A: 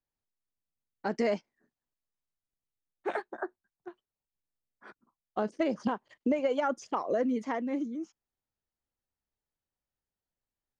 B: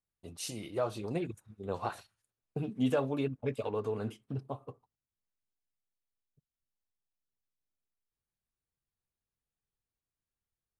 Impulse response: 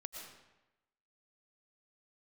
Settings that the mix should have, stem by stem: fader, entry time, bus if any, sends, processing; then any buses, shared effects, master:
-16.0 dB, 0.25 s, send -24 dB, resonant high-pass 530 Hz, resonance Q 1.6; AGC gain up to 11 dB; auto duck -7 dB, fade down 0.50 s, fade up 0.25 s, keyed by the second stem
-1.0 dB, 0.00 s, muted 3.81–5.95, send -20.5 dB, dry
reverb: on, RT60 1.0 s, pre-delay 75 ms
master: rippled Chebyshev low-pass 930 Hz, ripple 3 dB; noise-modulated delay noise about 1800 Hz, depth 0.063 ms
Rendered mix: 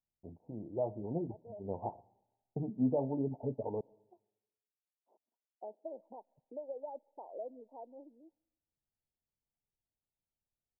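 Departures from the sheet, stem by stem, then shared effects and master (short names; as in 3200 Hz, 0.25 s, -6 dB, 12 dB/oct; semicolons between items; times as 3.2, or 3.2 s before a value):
stem A: missing AGC gain up to 11 dB; master: missing noise-modulated delay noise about 1800 Hz, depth 0.063 ms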